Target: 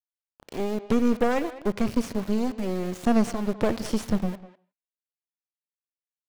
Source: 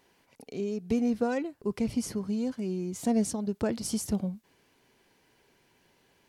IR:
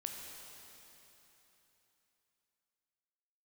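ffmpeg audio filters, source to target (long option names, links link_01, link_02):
-filter_complex "[0:a]aeval=exprs='val(0)*gte(abs(val(0)),0.0112)':channel_layout=same,aeval=exprs='0.158*(cos(1*acos(clip(val(0)/0.158,-1,1)))-cos(1*PI/2))+0.0282*(cos(6*acos(clip(val(0)/0.158,-1,1)))-cos(6*PI/2))':channel_layout=same,acrossover=split=5600[link_01][link_02];[link_02]acompressor=threshold=-44dB:ratio=4:attack=1:release=60[link_03];[link_01][link_03]amix=inputs=2:normalize=0,asplit=2[link_04][link_05];[link_05]adelay=200,highpass=300,lowpass=3400,asoftclip=type=hard:threshold=-26dB,volume=-14dB[link_06];[link_04][link_06]amix=inputs=2:normalize=0,asplit=2[link_07][link_08];[1:a]atrim=start_sample=2205,afade=type=out:start_time=0.22:duration=0.01,atrim=end_sample=10143,lowpass=4600[link_09];[link_08][link_09]afir=irnorm=-1:irlink=0,volume=-8.5dB[link_10];[link_07][link_10]amix=inputs=2:normalize=0,volume=2dB"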